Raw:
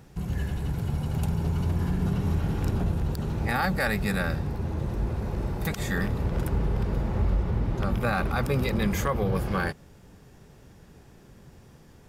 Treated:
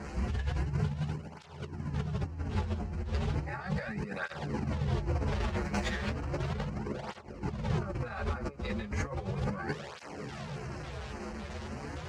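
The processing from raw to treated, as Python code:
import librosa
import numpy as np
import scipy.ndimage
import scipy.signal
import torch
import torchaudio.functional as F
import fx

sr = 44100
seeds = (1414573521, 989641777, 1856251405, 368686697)

y = fx.delta_mod(x, sr, bps=64000, step_db=-35.0)
y = fx.quant_companded(y, sr, bits=2, at=(5.31, 6.64), fade=0.02)
y = fx.air_absorb(y, sr, metres=130.0)
y = fx.filter_lfo_notch(y, sr, shape='square', hz=1.8, low_hz=280.0, high_hz=3500.0, q=1.7)
y = fx.low_shelf(y, sr, hz=66.0, db=-6.0)
y = fx.doubler(y, sr, ms=14.0, db=-3.0)
y = fx.over_compress(y, sr, threshold_db=-30.0, ratio=-0.5)
y = fx.flanger_cancel(y, sr, hz=0.35, depth_ms=7.9)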